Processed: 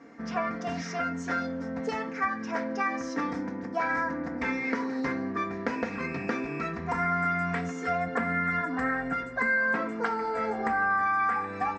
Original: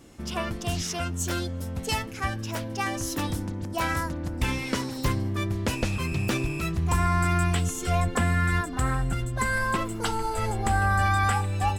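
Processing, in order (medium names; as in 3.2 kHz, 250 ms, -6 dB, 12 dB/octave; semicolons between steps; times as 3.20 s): high-pass 220 Hz 12 dB/octave; comb 4.3 ms, depth 75%; on a send at -5.5 dB: reverberation RT60 0.45 s, pre-delay 3 ms; on the sum: compression 6:1, threshold -26 dBFS, peak gain reduction 9 dB; steep low-pass 6.1 kHz 36 dB/octave; resonant high shelf 2.4 kHz -8.5 dB, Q 3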